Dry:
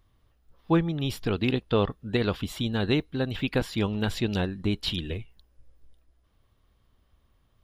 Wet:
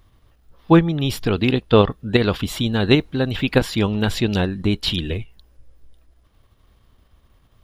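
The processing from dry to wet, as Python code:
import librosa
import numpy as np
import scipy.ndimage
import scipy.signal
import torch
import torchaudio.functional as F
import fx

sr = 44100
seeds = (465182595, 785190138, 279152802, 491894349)

p1 = fx.level_steps(x, sr, step_db=22)
p2 = x + (p1 * librosa.db_to_amplitude(-3.0))
p3 = fx.dmg_noise_colour(p2, sr, seeds[0], colour='brown', level_db=-55.0, at=(2.43, 3.52), fade=0.02)
y = p3 * librosa.db_to_amplitude(6.5)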